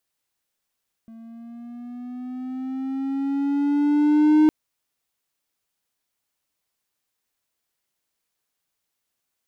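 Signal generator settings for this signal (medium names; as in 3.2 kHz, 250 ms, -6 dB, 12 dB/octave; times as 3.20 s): gliding synth tone triangle, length 3.41 s, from 225 Hz, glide +5.5 st, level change +28.5 dB, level -9.5 dB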